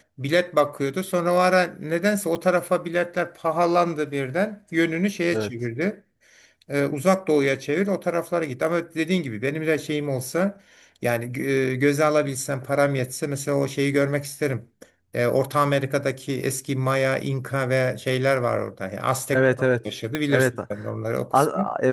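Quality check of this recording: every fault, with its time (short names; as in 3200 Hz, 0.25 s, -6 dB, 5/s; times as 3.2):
2.35 gap 2.5 ms
20.15 pop -10 dBFS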